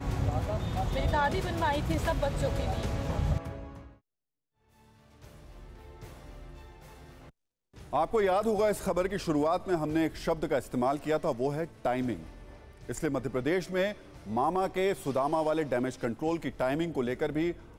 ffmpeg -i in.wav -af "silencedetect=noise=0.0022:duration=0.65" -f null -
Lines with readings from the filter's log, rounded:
silence_start: 3.97
silence_end: 4.78 | silence_duration: 0.80